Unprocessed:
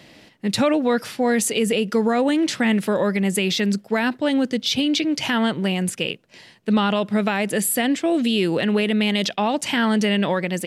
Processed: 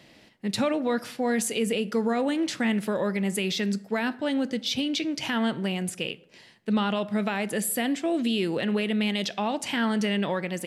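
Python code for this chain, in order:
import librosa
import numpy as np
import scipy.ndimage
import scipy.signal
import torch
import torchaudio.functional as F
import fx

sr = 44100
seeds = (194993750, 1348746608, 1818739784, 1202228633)

y = fx.rev_plate(x, sr, seeds[0], rt60_s=0.74, hf_ratio=0.55, predelay_ms=0, drr_db=15.0)
y = y * 10.0 ** (-6.5 / 20.0)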